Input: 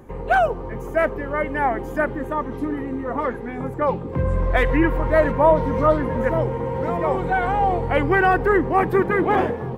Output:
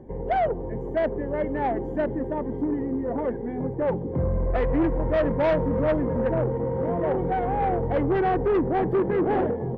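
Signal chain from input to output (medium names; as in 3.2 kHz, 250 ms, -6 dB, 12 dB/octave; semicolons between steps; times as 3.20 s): boxcar filter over 34 samples; bass shelf 160 Hz -5 dB; saturation -20.5 dBFS, distortion -12 dB; trim +3 dB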